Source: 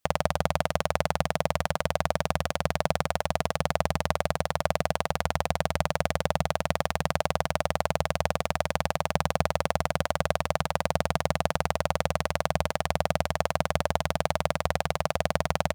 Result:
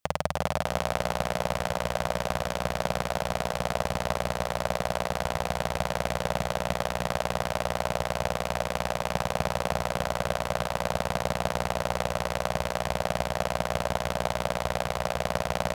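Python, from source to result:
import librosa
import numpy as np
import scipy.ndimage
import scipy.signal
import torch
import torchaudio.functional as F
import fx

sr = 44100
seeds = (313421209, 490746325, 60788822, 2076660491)

y = fx.echo_feedback(x, sr, ms=316, feedback_pct=43, wet_db=-4.0)
y = y * 10.0 ** (-2.5 / 20.0)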